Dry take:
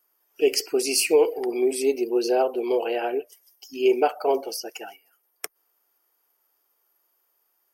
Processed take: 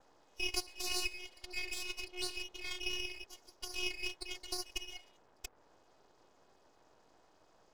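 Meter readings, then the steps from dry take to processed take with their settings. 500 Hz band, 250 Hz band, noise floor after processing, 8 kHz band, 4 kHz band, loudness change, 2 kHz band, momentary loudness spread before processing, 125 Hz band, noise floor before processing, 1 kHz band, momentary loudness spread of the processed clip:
−30.0 dB, −23.0 dB, −68 dBFS, −12.5 dB, −6.0 dB, −16.0 dB, −6.0 dB, 18 LU, can't be measured, −72 dBFS, −23.0 dB, 15 LU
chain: Chebyshev band-stop filter 200–2,400 Hz, order 5
downward compressor 3 to 1, threshold −43 dBFS, peak gain reduction 17.5 dB
channel vocoder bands 32, saw 362 Hz
noise in a band 280–1,000 Hz −75 dBFS
half-wave rectification
level +11 dB

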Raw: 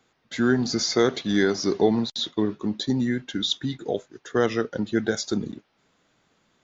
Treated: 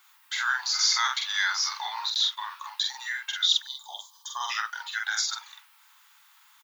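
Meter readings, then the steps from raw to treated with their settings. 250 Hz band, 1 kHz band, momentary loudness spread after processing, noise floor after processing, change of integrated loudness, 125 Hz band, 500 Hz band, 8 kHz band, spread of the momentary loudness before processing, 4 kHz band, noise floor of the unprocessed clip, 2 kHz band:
below −40 dB, +2.0 dB, 15 LU, −59 dBFS, −1.5 dB, below −40 dB, below −35 dB, can't be measured, 8 LU, +4.5 dB, −69 dBFS, +3.5 dB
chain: Chebyshev high-pass filter 870 Hz, order 6
gain on a spectral selection 0:03.62–0:04.50, 1,200–3,000 Hz −26 dB
in parallel at 0 dB: downward compressor, threshold −40 dBFS, peak gain reduction 18.5 dB
on the sum: background noise violet −65 dBFS
double-tracking delay 46 ms −2.5 dB
level +1 dB

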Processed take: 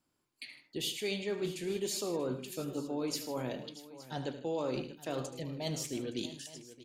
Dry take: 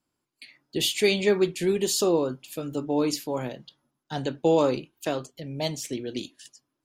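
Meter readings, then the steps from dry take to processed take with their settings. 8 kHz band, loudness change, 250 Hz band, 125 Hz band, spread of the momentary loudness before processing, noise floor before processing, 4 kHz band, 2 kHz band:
−8.5 dB, −11.0 dB, −10.0 dB, −7.5 dB, 14 LU, −82 dBFS, −9.0 dB, −11.0 dB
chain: reversed playback
downward compressor 4 to 1, threshold −35 dBFS, peak gain reduction 15.5 dB
reversed playback
multi-tap delay 76/108/155/636/868 ms −12.5/−14.5/−17.5/−15.5/−18 dB

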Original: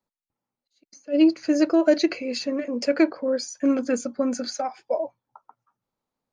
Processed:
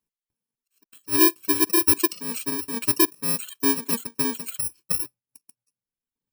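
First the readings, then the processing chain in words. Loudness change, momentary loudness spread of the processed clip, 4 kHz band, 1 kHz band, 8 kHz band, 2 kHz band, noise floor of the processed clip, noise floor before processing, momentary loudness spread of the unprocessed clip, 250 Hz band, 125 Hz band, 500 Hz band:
+2.0 dB, 10 LU, +4.0 dB, +2.0 dB, +13.0 dB, +2.5 dB, below −85 dBFS, below −85 dBFS, 9 LU, −5.5 dB, can't be measured, −7.5 dB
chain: samples in bit-reversed order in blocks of 64 samples
reverb reduction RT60 1.2 s

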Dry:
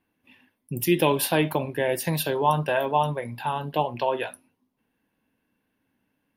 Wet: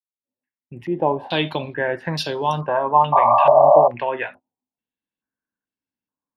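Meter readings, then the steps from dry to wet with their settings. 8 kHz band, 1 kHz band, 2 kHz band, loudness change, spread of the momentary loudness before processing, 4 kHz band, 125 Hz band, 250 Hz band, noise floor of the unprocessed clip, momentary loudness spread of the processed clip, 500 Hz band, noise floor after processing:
below −10 dB, +9.5 dB, +2.5 dB, +7.5 dB, 9 LU, +3.0 dB, −0.5 dB, −1.0 dB, −77 dBFS, 14 LU, +8.0 dB, below −85 dBFS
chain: fade in at the beginning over 1.49 s
noise gate −41 dBFS, range −21 dB
sound drawn into the spectrogram noise, 0:03.12–0:03.88, 560–1,200 Hz −15 dBFS
low-pass on a step sequencer 2.3 Hz 580–5,200 Hz

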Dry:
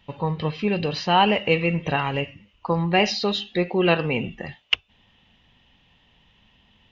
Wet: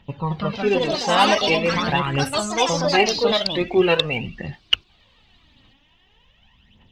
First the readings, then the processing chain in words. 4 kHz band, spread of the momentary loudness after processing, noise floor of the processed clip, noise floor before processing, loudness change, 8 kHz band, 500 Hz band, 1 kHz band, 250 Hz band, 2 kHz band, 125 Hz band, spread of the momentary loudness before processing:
+5.0 dB, 9 LU, −59 dBFS, −61 dBFS, +3.0 dB, can't be measured, +4.0 dB, +2.5 dB, +0.5 dB, +3.0 dB, −0.5 dB, 10 LU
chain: phase shifter 0.44 Hz, delay 3.9 ms, feedback 63%
delay with pitch and tempo change per echo 241 ms, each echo +4 semitones, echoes 3
level −1 dB

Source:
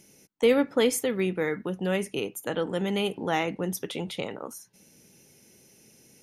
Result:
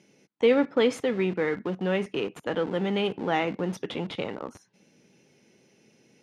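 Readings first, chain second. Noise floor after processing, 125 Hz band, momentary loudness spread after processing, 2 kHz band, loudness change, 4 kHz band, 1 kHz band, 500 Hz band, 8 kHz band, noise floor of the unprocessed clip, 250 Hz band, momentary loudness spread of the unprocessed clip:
−64 dBFS, +0.5 dB, 11 LU, +0.5 dB, +0.5 dB, −1.0 dB, +1.0 dB, +1.0 dB, −12.5 dB, −58 dBFS, +0.5 dB, 11 LU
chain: in parallel at −11 dB: comparator with hysteresis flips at −33 dBFS
on the sum: band-pass filter 140–3,700 Hz

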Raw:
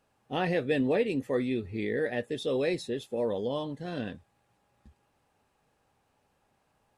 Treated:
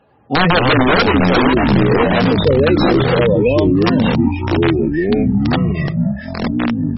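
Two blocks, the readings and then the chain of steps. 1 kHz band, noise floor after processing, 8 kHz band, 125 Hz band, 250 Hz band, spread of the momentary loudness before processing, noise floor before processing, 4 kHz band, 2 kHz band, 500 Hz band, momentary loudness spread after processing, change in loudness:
+22.5 dB, −29 dBFS, can't be measured, +24.5 dB, +20.5 dB, 9 LU, −73 dBFS, +21.0 dB, +20.0 dB, +15.5 dB, 6 LU, +17.0 dB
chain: expanding power law on the bin magnitudes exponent 1.6
high-pass filter 75 Hz 12 dB per octave
wrap-around overflow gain 22 dB
delay with pitch and tempo change per echo 89 ms, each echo −6 semitones, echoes 3
boost into a limiter +21 dB
level −3 dB
MP3 16 kbit/s 24,000 Hz

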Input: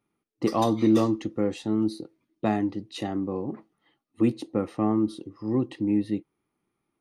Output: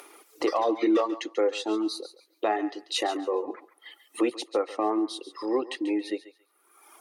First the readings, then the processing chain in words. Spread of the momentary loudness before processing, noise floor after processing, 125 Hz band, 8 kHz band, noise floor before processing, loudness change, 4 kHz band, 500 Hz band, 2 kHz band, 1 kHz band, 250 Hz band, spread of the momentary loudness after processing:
11 LU, −67 dBFS, below −25 dB, can't be measured, −81 dBFS, −1.5 dB, +7.0 dB, +2.5 dB, +5.5 dB, +2.5 dB, −4.5 dB, 11 LU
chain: inverse Chebyshev high-pass filter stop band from 190 Hz, stop band 40 dB
treble cut that deepens with the level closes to 2,400 Hz, closed at −24 dBFS
reverb reduction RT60 1.2 s
high-shelf EQ 7,200 Hz +7.5 dB
in parallel at +3 dB: upward compression, threshold −32 dBFS
on the sum: brickwall limiter −15.5 dBFS, peak gain reduction 9.5 dB
on a send: feedback echo with a high-pass in the loop 139 ms, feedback 24%, high-pass 730 Hz, level −12.5 dB

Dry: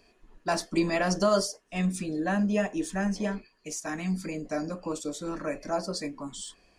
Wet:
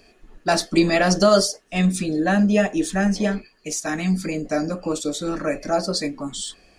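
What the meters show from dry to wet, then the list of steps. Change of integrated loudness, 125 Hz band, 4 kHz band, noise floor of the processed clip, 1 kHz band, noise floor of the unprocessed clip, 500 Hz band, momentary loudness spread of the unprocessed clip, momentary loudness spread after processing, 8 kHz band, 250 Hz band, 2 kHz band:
+8.5 dB, +8.5 dB, +10.5 dB, −56 dBFS, +7.5 dB, −65 dBFS, +8.5 dB, 12 LU, 11 LU, +9.0 dB, +8.5 dB, +8.5 dB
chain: notch filter 1,000 Hz, Q 6.8
dynamic equaliser 3,900 Hz, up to +6 dB, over −55 dBFS, Q 3.5
level +8.5 dB

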